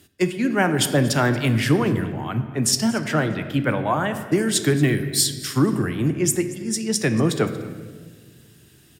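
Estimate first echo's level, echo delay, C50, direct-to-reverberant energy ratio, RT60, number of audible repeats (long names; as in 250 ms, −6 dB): −20.0 dB, 233 ms, 10.0 dB, 7.5 dB, 1.6 s, 1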